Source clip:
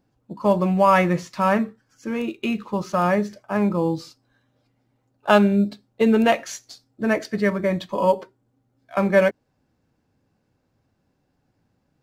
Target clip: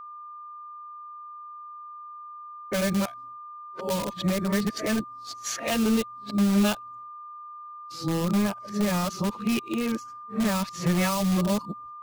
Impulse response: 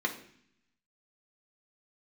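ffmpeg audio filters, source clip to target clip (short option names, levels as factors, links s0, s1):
-filter_complex "[0:a]areverse,agate=range=0.0224:threshold=0.00355:ratio=3:detection=peak,asplit=2[s0][s1];[s1]aeval=exprs='(mod(7.94*val(0)+1,2)-1)/7.94':c=same,volume=0.355[s2];[s0][s2]amix=inputs=2:normalize=0,acrossover=split=210|3000[s3][s4][s5];[s4]acompressor=threshold=0.0316:ratio=4[s6];[s3][s6][s5]amix=inputs=3:normalize=0,aeval=exprs='val(0)+0.0112*sin(2*PI*1200*n/s)':c=same"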